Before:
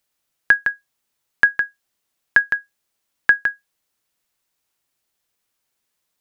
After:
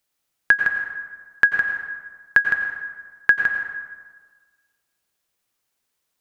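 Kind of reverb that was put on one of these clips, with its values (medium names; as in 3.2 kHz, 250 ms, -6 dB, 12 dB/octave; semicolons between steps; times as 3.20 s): plate-style reverb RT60 1.5 s, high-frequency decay 0.55×, pre-delay 80 ms, DRR 4.5 dB; trim -1.5 dB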